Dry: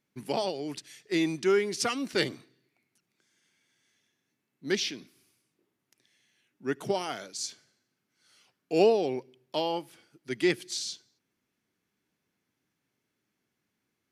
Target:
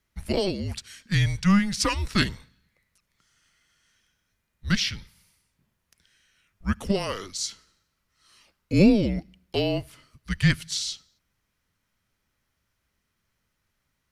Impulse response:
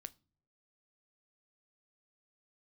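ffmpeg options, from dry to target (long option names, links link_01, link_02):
-af "afreqshift=-200,bandreject=frequency=740:width=12,volume=5dB"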